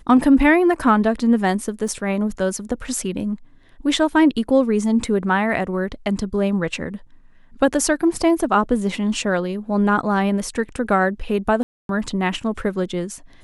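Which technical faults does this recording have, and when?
1.88 gap 4.3 ms
11.63–11.89 gap 0.262 s

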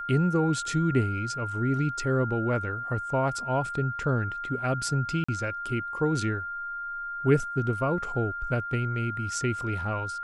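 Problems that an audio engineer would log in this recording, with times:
tone 1400 Hz -32 dBFS
5.24–5.29 gap 45 ms

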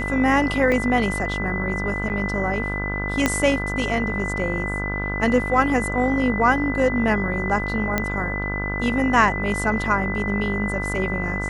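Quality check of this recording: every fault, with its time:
buzz 50 Hz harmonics 32 -28 dBFS
tone 2000 Hz -27 dBFS
0.72 gap 2.2 ms
2.09–2.1 gap 9.1 ms
3.26 pop -4 dBFS
7.98 pop -7 dBFS

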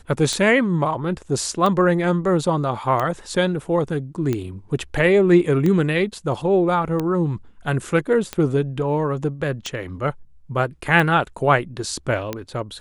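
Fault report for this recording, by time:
tick 45 rpm -11 dBFS

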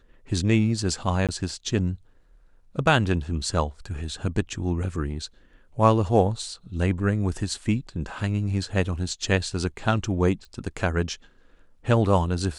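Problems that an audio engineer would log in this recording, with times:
1.27–1.29 gap 17 ms
10.45 pop

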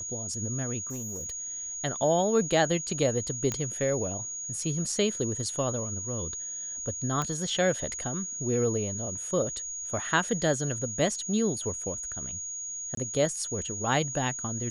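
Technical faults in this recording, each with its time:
tone 6700 Hz -34 dBFS
0.81–1.31 clipped -32.5 dBFS
3.52 pop -15 dBFS
7.22 pop -17 dBFS
12.95–12.97 gap 23 ms

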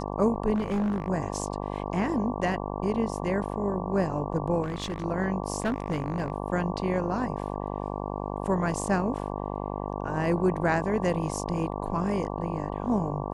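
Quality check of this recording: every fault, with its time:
buzz 50 Hz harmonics 23 -33 dBFS
0.54–1.08 clipped -23.5 dBFS
4.62–5.05 clipped -27 dBFS
5.6–6.3 clipped -22.5 dBFS

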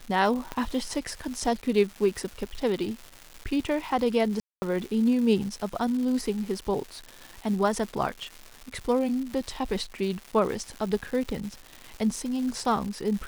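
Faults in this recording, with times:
crackle 360/s -34 dBFS
0.52 pop -17 dBFS
4.4–4.62 gap 0.22 s

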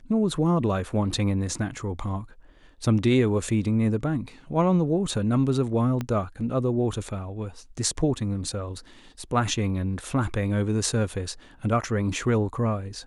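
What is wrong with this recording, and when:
6.01 pop -16 dBFS

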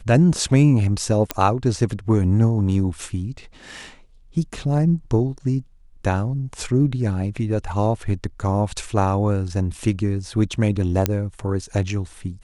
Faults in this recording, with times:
1.31 pop -4 dBFS
11.06 pop -3 dBFS

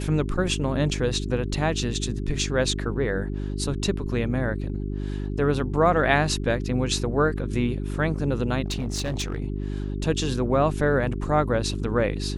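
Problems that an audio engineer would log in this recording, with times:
hum 50 Hz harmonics 8 -29 dBFS
8.64–9.4 clipped -23 dBFS

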